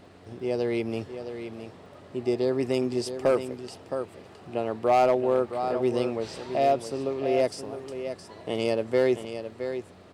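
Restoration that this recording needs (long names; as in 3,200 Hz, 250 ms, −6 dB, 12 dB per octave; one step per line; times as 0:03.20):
clipped peaks rebuilt −14.5 dBFS
click removal
hum removal 91.3 Hz, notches 5
echo removal 667 ms −9.5 dB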